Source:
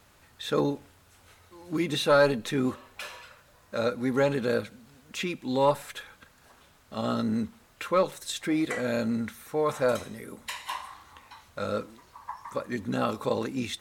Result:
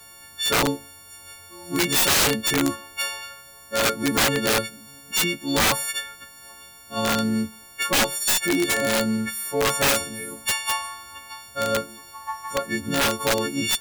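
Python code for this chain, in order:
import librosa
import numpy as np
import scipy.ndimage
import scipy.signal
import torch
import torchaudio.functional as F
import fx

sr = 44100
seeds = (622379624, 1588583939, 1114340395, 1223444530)

y = fx.freq_snap(x, sr, grid_st=4)
y = (np.mod(10.0 ** (18.0 / 20.0) * y + 1.0, 2.0) - 1.0) / 10.0 ** (18.0 / 20.0)
y = y * 10.0 ** (4.5 / 20.0)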